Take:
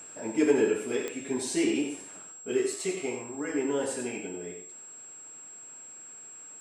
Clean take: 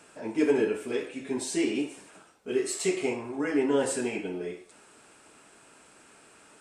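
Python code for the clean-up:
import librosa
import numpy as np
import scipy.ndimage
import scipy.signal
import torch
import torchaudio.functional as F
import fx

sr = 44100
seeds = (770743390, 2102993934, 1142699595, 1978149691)

y = fx.fix_declick_ar(x, sr, threshold=10.0)
y = fx.notch(y, sr, hz=7600.0, q=30.0)
y = fx.fix_echo_inverse(y, sr, delay_ms=91, level_db=-7.5)
y = fx.fix_level(y, sr, at_s=2.66, step_db=4.5)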